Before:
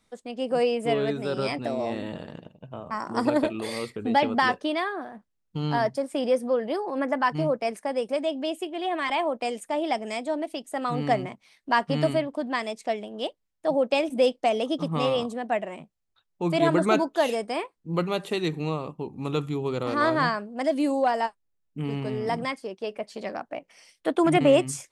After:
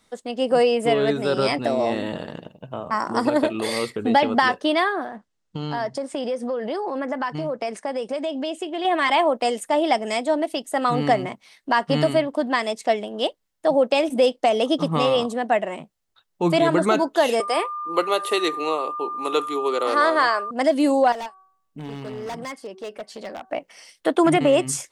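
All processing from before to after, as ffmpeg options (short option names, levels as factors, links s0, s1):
-filter_complex "[0:a]asettb=1/sr,asplit=3[s0][s1][s2];[s0]atrim=end=5.064[s3];[s1]atrim=start=5.06:end=8.85,asetpts=PTS-STARTPTS,afade=t=in:d=0.004:c=qsin,afade=t=out:st=3.786:d=0.004:c=qsin,lowpass=f=8600:w=0.5412,lowpass=f=8600:w=1.3066,acompressor=threshold=0.0316:ratio=5:attack=3.2:release=140:knee=1:detection=peak[s4];[s2]atrim=start=8.846[s5];[s3][s4]acrossfade=d=0.004:c1=hsin:c2=qsin[s6];[s6][s5]acrossfade=d=0.004:c1=qsin:c2=hsin,asettb=1/sr,asplit=3[s7][s8][s9];[s7]atrim=end=17.404[s10];[s8]atrim=start=17.4:end=20.51,asetpts=PTS-STARTPTS,afade=t=in:d=0.004:c=qsin,afade=t=out:st=3.106:d=0.004:c=qsin,highpass=f=340:w=0.5412,highpass=f=340:w=1.3066,equalizer=f=10000:t=o:w=0.24:g=10.5,aeval=exprs='val(0)+0.0178*sin(2*PI*1200*n/s)':c=same[s11];[s9]atrim=start=20.506[s12];[s10][s11]acrossfade=d=0.004:c1=hsin:c2=qsin[s13];[s13][s12]acrossfade=d=0.004:c1=qsin:c2=hsin,asettb=1/sr,asplit=3[s14][s15][s16];[s14]atrim=end=21.124[s17];[s15]atrim=start=21.12:end=23.5,asetpts=PTS-STARTPTS,afade=t=in:d=0.004:c=qsin,afade=t=out:st=2.376:d=0.004:c=qsin,bandreject=f=379.9:t=h:w=4,bandreject=f=759.8:t=h:w=4,bandreject=f=1139.7:t=h:w=4,bandreject=f=1519.6:t=h:w=4,acompressor=threshold=0.00316:ratio=1.5:attack=3.2:release=140:knee=1:detection=peak,aeval=exprs='0.0237*(abs(mod(val(0)/0.0237+3,4)-2)-1)':c=same[s18];[s16]atrim=start=23.496[s19];[s17][s18]acrossfade=d=0.004:c1=hsin:c2=qsin[s20];[s20][s19]acrossfade=d=0.004:c1=qsin:c2=hsin,alimiter=limit=0.168:level=0:latency=1:release=185,lowshelf=f=210:g=-6.5,bandreject=f=2400:w=16,volume=2.51"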